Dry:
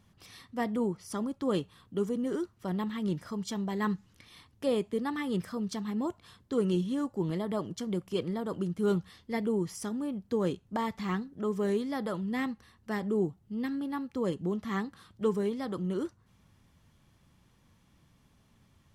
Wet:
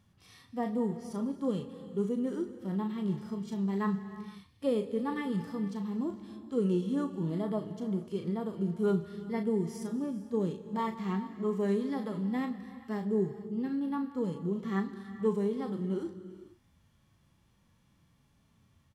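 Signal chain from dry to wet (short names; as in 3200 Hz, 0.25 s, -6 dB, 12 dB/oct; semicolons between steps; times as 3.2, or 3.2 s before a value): doubler 36 ms -11.5 dB; harmonic-percussive split percussive -17 dB; non-linear reverb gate 0.5 s flat, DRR 11 dB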